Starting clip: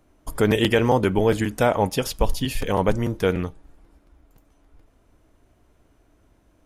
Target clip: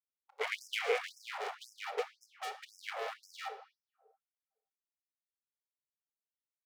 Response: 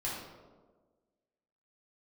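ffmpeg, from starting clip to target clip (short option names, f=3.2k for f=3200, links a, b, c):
-filter_complex "[0:a]afwtdn=0.0447,equalizer=f=240:t=o:w=2:g=8,acrossover=split=290|2200[a][b][c];[b]acompressor=mode=upward:threshold=-31dB:ratio=2.5[d];[a][d][c]amix=inputs=3:normalize=0,asoftclip=type=hard:threshold=-11dB,adynamicsmooth=sensitivity=0.5:basefreq=1.7k,asplit=3[e][f][g];[e]bandpass=f=270:t=q:w=8,volume=0dB[h];[f]bandpass=f=2.29k:t=q:w=8,volume=-6dB[i];[g]bandpass=f=3.01k:t=q:w=8,volume=-9dB[j];[h][i][j]amix=inputs=3:normalize=0,aeval=exprs='sgn(val(0))*max(abs(val(0))-0.00631,0)':c=same,afreqshift=-23,flanger=delay=2.3:depth=8.3:regen=-90:speed=1.1:shape=triangular,asplit=2[k][l];[1:a]atrim=start_sample=2205,asetrate=48510,aresample=44100,adelay=28[m];[l][m]afir=irnorm=-1:irlink=0,volume=-11.5dB[n];[k][n]amix=inputs=2:normalize=0,afftfilt=real='re*gte(b*sr/1024,390*pow(5100/390,0.5+0.5*sin(2*PI*1.9*pts/sr)))':imag='im*gte(b*sr/1024,390*pow(5100/390,0.5+0.5*sin(2*PI*1.9*pts/sr)))':win_size=1024:overlap=0.75,volume=17dB"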